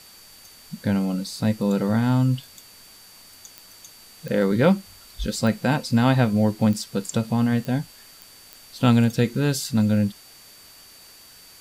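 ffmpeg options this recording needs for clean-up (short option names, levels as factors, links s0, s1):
-af "adeclick=t=4,bandreject=f=4600:w=30,afftdn=nr=19:nf=-48"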